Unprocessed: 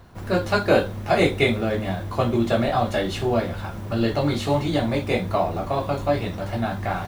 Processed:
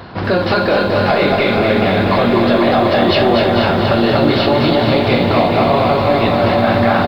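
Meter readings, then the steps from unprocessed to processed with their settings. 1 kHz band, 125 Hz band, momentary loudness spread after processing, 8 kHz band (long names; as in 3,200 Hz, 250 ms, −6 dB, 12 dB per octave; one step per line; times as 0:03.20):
+11.0 dB, +7.0 dB, 2 LU, can't be measured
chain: high-pass filter 66 Hz 12 dB per octave
low-shelf EQ 120 Hz −10.5 dB
downward compressor 6 to 1, threshold −26 dBFS, peak gain reduction 12.5 dB
sine wavefolder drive 4 dB, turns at −14 dBFS
on a send: delay that swaps between a low-pass and a high-pass 217 ms, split 830 Hz, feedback 59%, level −6 dB
on the sum: four-comb reverb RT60 1.3 s, combs from 30 ms, DRR 14.5 dB
downsampling to 11,025 Hz
boost into a limiter +16.5 dB
feedback echo at a low word length 243 ms, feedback 80%, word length 7 bits, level −5.5 dB
level −5.5 dB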